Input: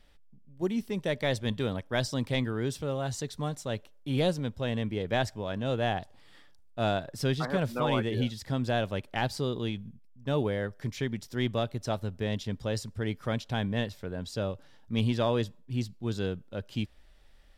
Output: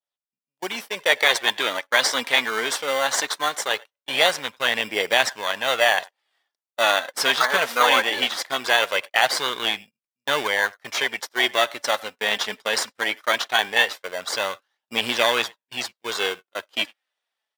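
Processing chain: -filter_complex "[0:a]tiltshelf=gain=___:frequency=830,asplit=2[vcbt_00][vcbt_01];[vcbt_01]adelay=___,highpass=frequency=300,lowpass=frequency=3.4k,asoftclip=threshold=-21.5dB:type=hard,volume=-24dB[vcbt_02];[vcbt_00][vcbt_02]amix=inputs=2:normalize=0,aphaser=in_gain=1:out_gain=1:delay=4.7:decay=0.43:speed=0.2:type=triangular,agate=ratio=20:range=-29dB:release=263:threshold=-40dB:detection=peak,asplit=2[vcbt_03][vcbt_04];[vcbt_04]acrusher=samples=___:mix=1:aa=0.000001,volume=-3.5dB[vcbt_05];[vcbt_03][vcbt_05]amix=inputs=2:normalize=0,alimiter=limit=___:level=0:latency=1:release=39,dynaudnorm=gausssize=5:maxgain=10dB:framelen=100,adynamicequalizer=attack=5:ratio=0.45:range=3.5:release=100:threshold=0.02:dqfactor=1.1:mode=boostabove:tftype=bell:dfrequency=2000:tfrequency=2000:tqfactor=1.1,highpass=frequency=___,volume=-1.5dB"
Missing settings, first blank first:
-5.5, 100, 17, -14dB, 610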